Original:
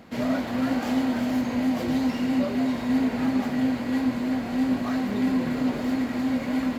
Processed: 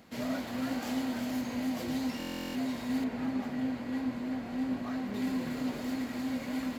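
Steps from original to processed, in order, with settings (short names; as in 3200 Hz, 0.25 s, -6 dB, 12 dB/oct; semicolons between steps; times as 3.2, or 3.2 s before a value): high shelf 3700 Hz +9 dB, from 3.04 s -2 dB, from 5.14 s +8.5 dB; stuck buffer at 2.18, samples 1024, times 15; gain -9 dB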